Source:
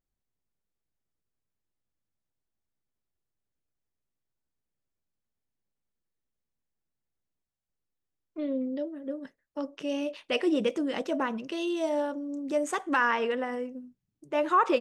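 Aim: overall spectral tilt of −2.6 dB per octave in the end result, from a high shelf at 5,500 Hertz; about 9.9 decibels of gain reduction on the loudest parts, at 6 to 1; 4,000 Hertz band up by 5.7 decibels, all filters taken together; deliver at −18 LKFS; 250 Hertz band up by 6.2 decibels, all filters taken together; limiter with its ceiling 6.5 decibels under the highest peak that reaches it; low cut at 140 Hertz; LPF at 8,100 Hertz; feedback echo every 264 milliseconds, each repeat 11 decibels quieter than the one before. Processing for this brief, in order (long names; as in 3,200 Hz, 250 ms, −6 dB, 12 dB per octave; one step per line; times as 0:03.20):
high-pass filter 140 Hz
low-pass filter 8,100 Hz
parametric band 250 Hz +8 dB
parametric band 4,000 Hz +7.5 dB
high-shelf EQ 5,500 Hz +3.5 dB
downward compressor 6 to 1, threshold −28 dBFS
brickwall limiter −24 dBFS
repeating echo 264 ms, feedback 28%, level −11 dB
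level +15 dB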